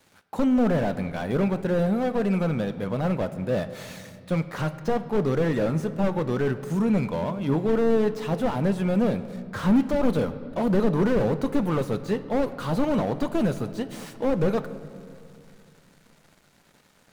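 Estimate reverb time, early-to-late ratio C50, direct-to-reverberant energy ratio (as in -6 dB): 2.4 s, 13.0 dB, 11.5 dB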